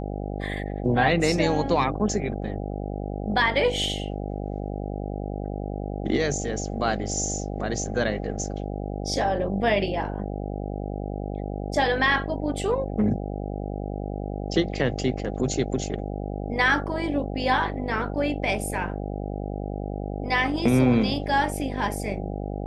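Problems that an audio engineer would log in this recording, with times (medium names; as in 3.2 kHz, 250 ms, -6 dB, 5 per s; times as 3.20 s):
buzz 50 Hz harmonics 16 -31 dBFS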